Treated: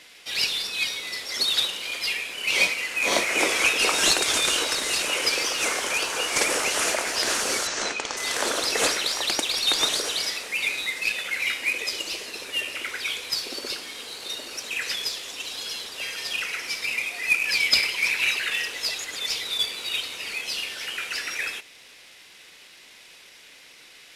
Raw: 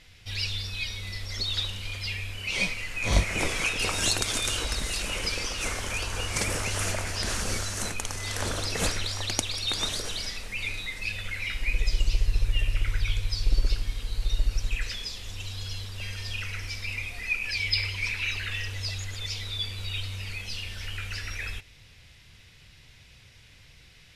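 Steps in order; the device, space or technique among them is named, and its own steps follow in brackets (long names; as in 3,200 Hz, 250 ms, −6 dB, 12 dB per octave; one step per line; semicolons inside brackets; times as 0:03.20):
early wireless headset (high-pass filter 300 Hz 24 dB per octave; variable-slope delta modulation 64 kbit/s)
0:07.67–0:08.17: low-pass filter 6,700 Hz 24 dB per octave
level +7 dB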